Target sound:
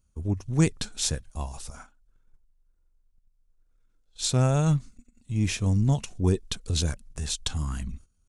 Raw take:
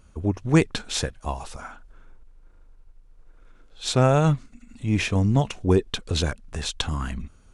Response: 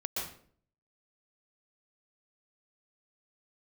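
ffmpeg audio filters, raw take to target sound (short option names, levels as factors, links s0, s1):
-af "bass=f=250:g=8,treble=f=4000:g=13,atempo=0.91,agate=range=0.2:threshold=0.0178:ratio=16:detection=peak,volume=0.355"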